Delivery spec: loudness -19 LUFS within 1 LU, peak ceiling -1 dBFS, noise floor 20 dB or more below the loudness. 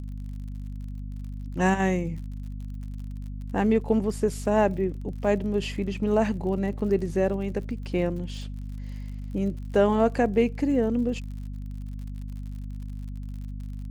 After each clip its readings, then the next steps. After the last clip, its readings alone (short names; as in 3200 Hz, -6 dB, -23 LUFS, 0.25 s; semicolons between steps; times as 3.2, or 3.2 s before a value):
ticks 56/s; hum 50 Hz; harmonics up to 250 Hz; hum level -32 dBFS; loudness -26.0 LUFS; peak -9.0 dBFS; loudness target -19.0 LUFS
-> de-click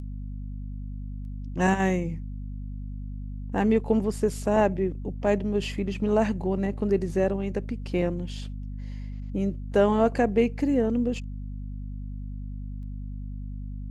ticks 0.22/s; hum 50 Hz; harmonics up to 250 Hz; hum level -32 dBFS
-> notches 50/100/150/200/250 Hz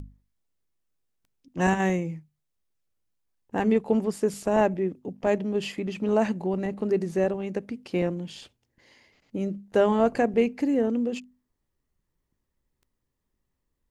hum none; loudness -26.5 LUFS; peak -10.5 dBFS; loudness target -19.0 LUFS
-> gain +7.5 dB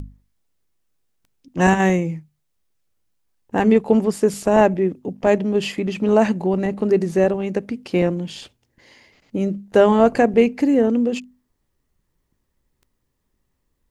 loudness -19.0 LUFS; peak -3.0 dBFS; noise floor -72 dBFS